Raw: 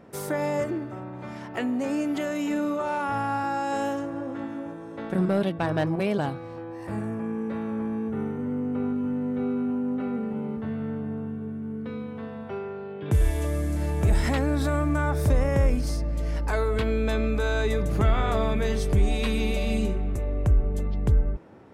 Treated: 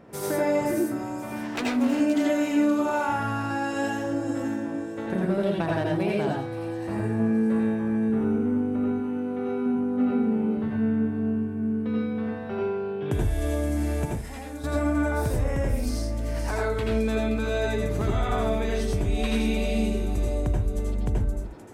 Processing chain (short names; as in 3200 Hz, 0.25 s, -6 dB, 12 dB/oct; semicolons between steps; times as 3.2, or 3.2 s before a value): 1.36–1.92 self-modulated delay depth 0.3 ms; 8.9–9.66 low shelf 200 Hz -11 dB; compressor, threshold -25 dBFS, peak gain reduction 9.5 dB; 14.05–14.64 resonator 160 Hz, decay 0.22 s, harmonics odd, mix 80%; thin delay 0.524 s, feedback 30%, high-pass 5500 Hz, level -3.5 dB; reverb RT60 0.35 s, pre-delay 76 ms, DRR -2 dB